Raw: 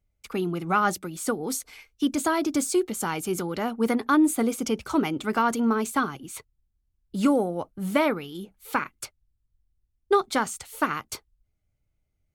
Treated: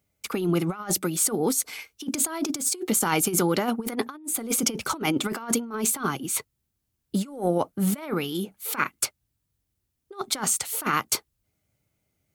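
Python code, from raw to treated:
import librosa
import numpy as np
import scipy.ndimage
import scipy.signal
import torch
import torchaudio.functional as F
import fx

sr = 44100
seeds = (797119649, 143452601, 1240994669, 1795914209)

y = scipy.signal.sosfilt(scipy.signal.butter(2, 130.0, 'highpass', fs=sr, output='sos'), x)
y = fx.high_shelf(y, sr, hz=6900.0, db=6.5)
y = fx.over_compress(y, sr, threshold_db=-29.0, ratio=-0.5)
y = F.gain(torch.from_numpy(y), 3.5).numpy()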